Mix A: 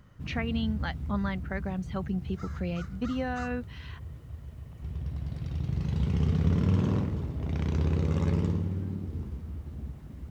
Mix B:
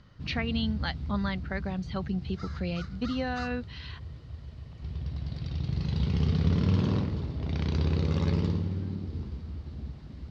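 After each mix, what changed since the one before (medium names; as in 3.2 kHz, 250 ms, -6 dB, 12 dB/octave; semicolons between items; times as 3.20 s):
master: add resonant low-pass 4.5 kHz, resonance Q 3.5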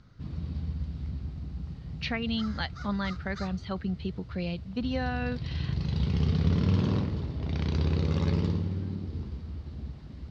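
speech: entry +1.75 s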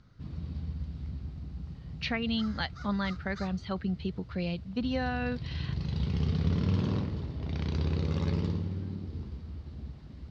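background -3.0 dB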